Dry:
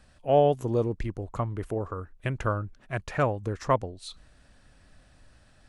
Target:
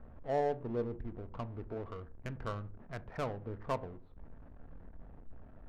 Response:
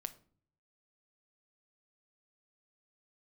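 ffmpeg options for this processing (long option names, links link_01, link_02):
-filter_complex "[0:a]aeval=exprs='val(0)+0.5*0.02*sgn(val(0))':channel_layout=same,adynamicsmooth=sensitivity=3:basefreq=620[link_01];[1:a]atrim=start_sample=2205,asetrate=61740,aresample=44100[link_02];[link_01][link_02]afir=irnorm=-1:irlink=0,adynamicsmooth=sensitivity=4.5:basefreq=1800,volume=-6dB"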